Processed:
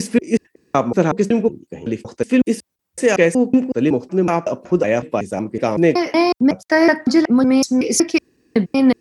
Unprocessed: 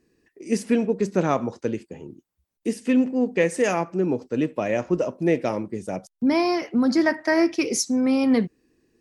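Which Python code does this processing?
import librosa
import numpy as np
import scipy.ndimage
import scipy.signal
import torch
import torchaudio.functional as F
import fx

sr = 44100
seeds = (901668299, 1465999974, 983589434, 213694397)

y = fx.block_reorder(x, sr, ms=186.0, group=4)
y = scipy.signal.sosfilt(scipy.signal.butter(2, 54.0, 'highpass', fs=sr, output='sos'), y)
y = F.gain(torch.from_numpy(y), 6.5).numpy()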